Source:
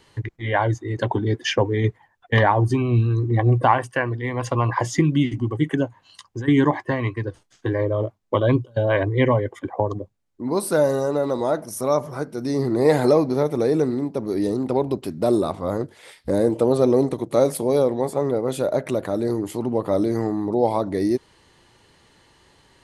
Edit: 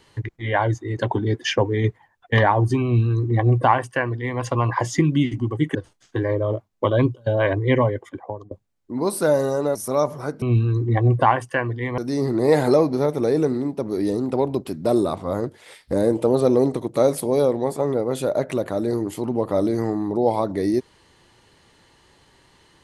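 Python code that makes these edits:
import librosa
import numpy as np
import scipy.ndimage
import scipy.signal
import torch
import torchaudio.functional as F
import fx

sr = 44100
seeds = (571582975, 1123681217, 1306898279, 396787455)

y = fx.edit(x, sr, fx.duplicate(start_s=2.84, length_s=1.56, to_s=12.35),
    fx.cut(start_s=5.75, length_s=1.5),
    fx.fade_out_to(start_s=9.35, length_s=0.66, floor_db=-22.0),
    fx.cut(start_s=11.25, length_s=0.43), tone=tone)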